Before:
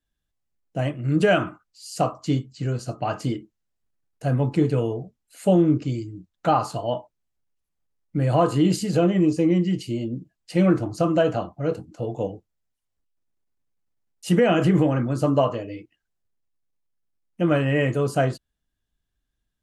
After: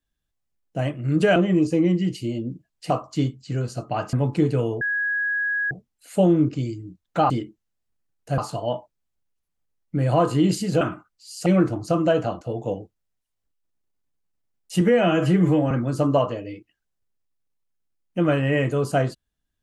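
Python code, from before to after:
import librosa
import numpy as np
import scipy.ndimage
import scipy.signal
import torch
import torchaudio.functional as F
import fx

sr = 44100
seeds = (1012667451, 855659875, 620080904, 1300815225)

y = fx.edit(x, sr, fx.swap(start_s=1.36, length_s=0.65, other_s=9.02, other_length_s=1.54),
    fx.move(start_s=3.24, length_s=1.08, to_s=6.59),
    fx.insert_tone(at_s=5.0, length_s=0.9, hz=1660.0, db=-21.0),
    fx.cut(start_s=11.51, length_s=0.43),
    fx.stretch_span(start_s=14.34, length_s=0.6, factor=1.5), tone=tone)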